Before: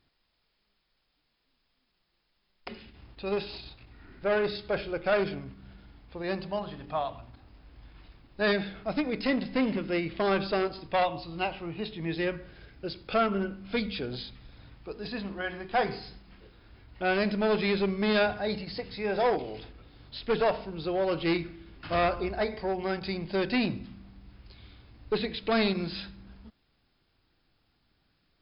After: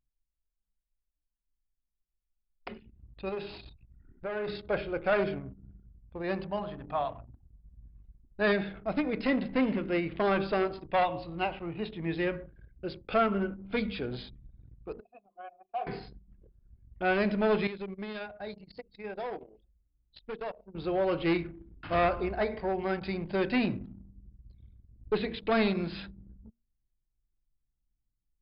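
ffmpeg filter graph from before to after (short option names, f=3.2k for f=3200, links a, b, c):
-filter_complex "[0:a]asettb=1/sr,asplit=3[a][b][c];[a]atrim=end=3.294[d];[b]atrim=start=3.29:end=4.48,asetpts=PTS-STARTPTS,afade=t=in:d=0.004:c=qsin,afade=t=out:st=1.186:d=0.004:c=qsin,bandreject=f=50:t=h:w=6,bandreject=f=100:t=h:w=6,bandreject=f=150:t=h:w=6,bandreject=f=200:t=h:w=6,bandreject=f=250:t=h:w=6,bandreject=f=300:t=h:w=6,bandreject=f=350:t=h:w=6,bandreject=f=400:t=h:w=6,bandreject=f=450:t=h:w=6,bandreject=f=500:t=h:w=6,acompressor=threshold=-33dB:ratio=3:attack=3.2:release=140:knee=1:detection=peak[e];[c]atrim=start=4.476[f];[d][e]acrossfade=d=0.004:c1=hsin:c2=qsin[g];[g][f]acrossfade=d=0.004:c1=qsin:c2=hsin,asettb=1/sr,asplit=3[h][i][j];[h]atrim=end=15.004[k];[i]atrim=start=15:end=15.87,asetpts=PTS-STARTPTS,afade=t=in:d=0.004:c=qsin,afade=t=out:st=0.866:d=0.004:c=qsin,aeval=exprs='0.0668*(abs(mod(val(0)/0.0668+3,4)-2)-1)':c=same,asplit=3[l][m][n];[l]bandpass=f=730:t=q:w=8,volume=0dB[o];[m]bandpass=f=1.09k:t=q:w=8,volume=-6dB[p];[n]bandpass=f=2.44k:t=q:w=8,volume=-9dB[q];[o][p][q]amix=inputs=3:normalize=0[r];[j]atrim=start=15.866[s];[k][r]acrossfade=d=0.004:c1=hsin:c2=qsin[t];[t][s]acrossfade=d=0.004:c1=qsin:c2=hsin,asettb=1/sr,asplit=3[u][v][w];[u]atrim=end=17.674[x];[v]atrim=start=17.67:end=20.75,asetpts=PTS-STARTPTS,afade=t=in:d=0.004:c=qsin,afade=t=out:st=3.076:d=0.004:c=qsin,highshelf=f=3.7k:g=8.5,acompressor=threshold=-34dB:ratio=5:attack=3.2:release=140:knee=1:detection=peak,agate=range=-12dB:threshold=-38dB:ratio=16:release=100:detection=peak[y];[w]atrim=start=20.746[z];[x][y]acrossfade=d=0.004:c1=hsin:c2=qsin[aa];[aa][z]acrossfade=d=0.004:c1=qsin:c2=hsin,bandreject=f=77.54:t=h:w=4,bandreject=f=155.08:t=h:w=4,bandreject=f=232.62:t=h:w=4,bandreject=f=310.16:t=h:w=4,bandreject=f=387.7:t=h:w=4,bandreject=f=465.24:t=h:w=4,bandreject=f=542.78:t=h:w=4,bandreject=f=620.32:t=h:w=4,anlmdn=0.0398,lowpass=3k"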